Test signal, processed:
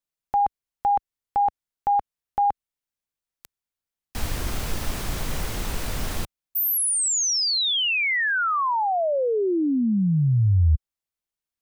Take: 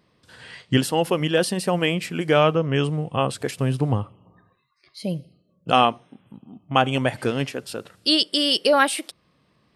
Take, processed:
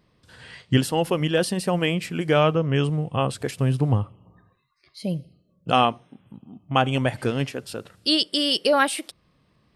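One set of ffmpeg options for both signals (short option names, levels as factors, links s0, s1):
-af "lowshelf=f=94:g=11,volume=0.794"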